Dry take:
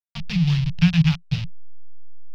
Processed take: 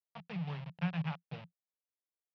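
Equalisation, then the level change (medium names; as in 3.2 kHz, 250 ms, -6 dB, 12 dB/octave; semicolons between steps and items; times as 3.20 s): ladder band-pass 580 Hz, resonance 30%; +9.0 dB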